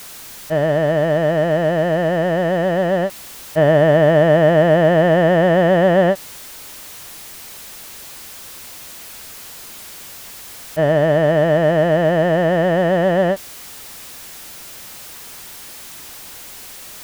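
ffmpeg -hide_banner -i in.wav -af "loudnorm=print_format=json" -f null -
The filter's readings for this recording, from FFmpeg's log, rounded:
"input_i" : "-15.5",
"input_tp" : "-4.0",
"input_lra" : "18.7",
"input_thresh" : "-28.9",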